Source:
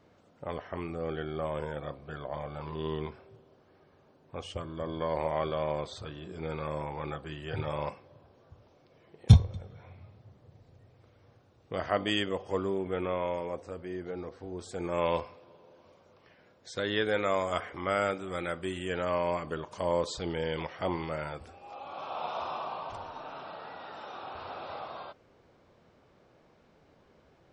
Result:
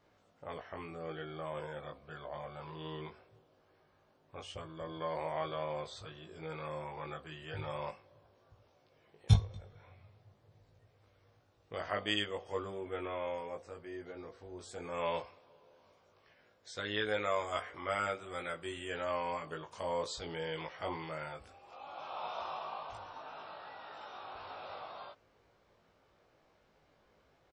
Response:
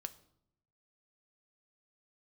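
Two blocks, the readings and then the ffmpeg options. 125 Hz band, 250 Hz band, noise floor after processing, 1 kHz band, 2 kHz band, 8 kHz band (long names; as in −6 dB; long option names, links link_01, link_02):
−8.0 dB, −9.5 dB, −70 dBFS, −4.5 dB, −3.5 dB, −3.5 dB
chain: -filter_complex "[0:a]equalizer=frequency=200:width_type=o:width=2.7:gain=-7.5,asplit=2[link_01][link_02];[link_02]adelay=19,volume=-3dB[link_03];[link_01][link_03]amix=inputs=2:normalize=0,volume=-5dB"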